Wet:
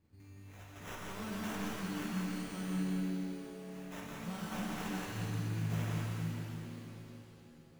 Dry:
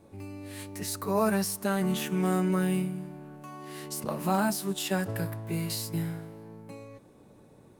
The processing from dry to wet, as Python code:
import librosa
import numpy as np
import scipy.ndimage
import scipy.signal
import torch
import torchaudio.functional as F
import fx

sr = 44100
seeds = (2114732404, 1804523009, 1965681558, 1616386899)

y = fx.tone_stack(x, sr, knobs='6-0-2')
y = fx.sample_hold(y, sr, seeds[0], rate_hz=4500.0, jitter_pct=0)
y = y + 10.0 ** (-3.5 / 20.0) * np.pad(y, (int(173 * sr / 1000.0), 0))[:len(y)]
y = fx.rev_shimmer(y, sr, seeds[1], rt60_s=3.3, semitones=7, shimmer_db=-8, drr_db=-3.5)
y = y * librosa.db_to_amplitude(1.5)